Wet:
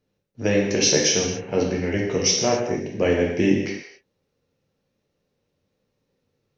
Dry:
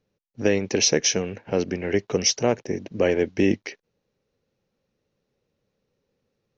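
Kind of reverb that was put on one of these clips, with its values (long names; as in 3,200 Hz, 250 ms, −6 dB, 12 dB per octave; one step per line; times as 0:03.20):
reverb whose tail is shaped and stops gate 300 ms falling, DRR −2 dB
level −2 dB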